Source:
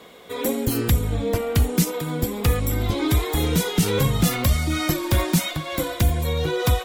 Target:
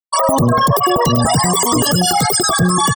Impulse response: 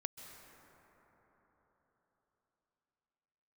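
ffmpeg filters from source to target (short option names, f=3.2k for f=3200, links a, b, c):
-filter_complex "[0:a]highshelf=f=4.4k:g=-10,acrossover=split=400|4200[a][b][c];[a]asoftclip=type=hard:threshold=-18.5dB[d];[d][b][c]amix=inputs=3:normalize=0,crystalizer=i=3:c=0,acompressor=threshold=-26dB:ratio=2.5,tiltshelf=f=970:g=-3.5,afftfilt=real='re*gte(hypot(re,im),0.0562)':imag='im*gte(hypot(re,im),0.0562)':win_size=1024:overlap=0.75,asetrate=102312,aresample=44100,asuperstop=centerf=2500:order=12:qfactor=3.7,aecho=1:1:103|206:0.141|0.0353,alimiter=level_in=28.5dB:limit=-1dB:release=50:level=0:latency=1,volume=-5dB"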